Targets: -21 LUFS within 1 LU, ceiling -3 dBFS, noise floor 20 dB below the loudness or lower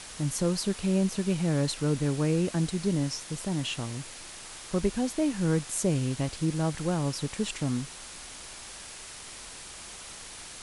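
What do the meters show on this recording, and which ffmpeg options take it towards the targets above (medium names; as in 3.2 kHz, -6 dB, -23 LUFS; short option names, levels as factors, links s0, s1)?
noise floor -44 dBFS; noise floor target -49 dBFS; loudness -29.0 LUFS; peak level -13.5 dBFS; loudness target -21.0 LUFS
-> -af "afftdn=nr=6:nf=-44"
-af "volume=2.51"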